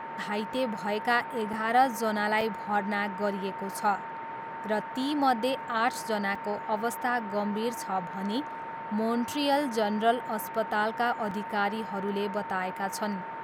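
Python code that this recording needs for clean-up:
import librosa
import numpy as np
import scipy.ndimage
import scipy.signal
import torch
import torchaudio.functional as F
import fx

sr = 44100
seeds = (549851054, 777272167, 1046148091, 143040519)

y = fx.notch(x, sr, hz=910.0, q=30.0)
y = fx.fix_interpolate(y, sr, at_s=(0.77, 1.53, 2.41, 6.35, 11.31), length_ms=3.7)
y = fx.noise_reduce(y, sr, print_start_s=4.06, print_end_s=4.56, reduce_db=30.0)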